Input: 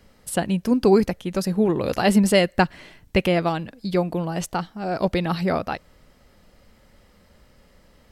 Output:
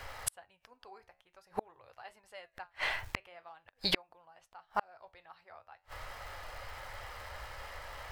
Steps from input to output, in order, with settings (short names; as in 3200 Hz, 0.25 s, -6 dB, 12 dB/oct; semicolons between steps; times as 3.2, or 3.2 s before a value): EQ curve 110 Hz 0 dB, 200 Hz -23 dB, 810 Hz +11 dB, 1700 Hz +10 dB, 7200 Hz -1 dB; crackle 460/s -52 dBFS; flange 0.47 Hz, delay 7.2 ms, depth 7.2 ms, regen -70%; flipped gate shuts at -26 dBFS, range -42 dB; gain +10.5 dB